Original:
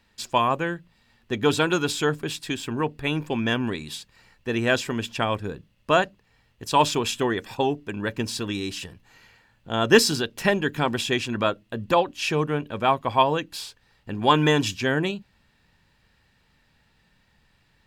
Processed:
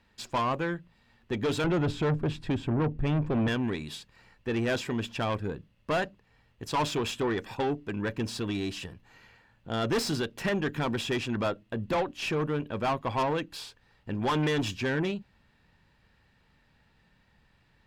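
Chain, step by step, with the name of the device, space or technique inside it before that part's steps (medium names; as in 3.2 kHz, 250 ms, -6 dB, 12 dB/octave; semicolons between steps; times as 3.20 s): 1.64–3.48 s: RIAA curve playback; tube preamp driven hard (valve stage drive 23 dB, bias 0.25; treble shelf 3.8 kHz -9 dB)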